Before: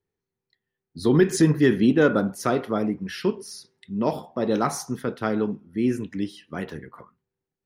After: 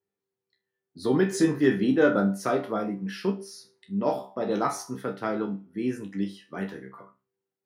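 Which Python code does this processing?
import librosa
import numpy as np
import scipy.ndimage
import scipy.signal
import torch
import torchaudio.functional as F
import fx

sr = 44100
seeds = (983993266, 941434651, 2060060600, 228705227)

y = scipy.signal.sosfilt(scipy.signal.butter(2, 120.0, 'highpass', fs=sr, output='sos'), x)
y = fx.peak_eq(y, sr, hz=730.0, db=4.0, octaves=2.7)
y = fx.resonator_bank(y, sr, root=36, chord='fifth', decay_s=0.27)
y = F.gain(torch.from_numpy(y), 4.0).numpy()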